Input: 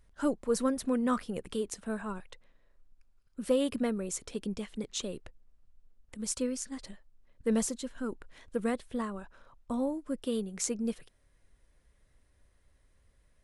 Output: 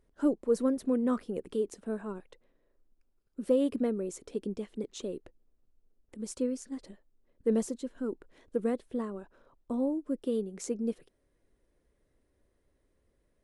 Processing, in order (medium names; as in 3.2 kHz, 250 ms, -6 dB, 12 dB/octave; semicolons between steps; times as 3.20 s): peaking EQ 360 Hz +14 dB 1.8 oct; trim -9 dB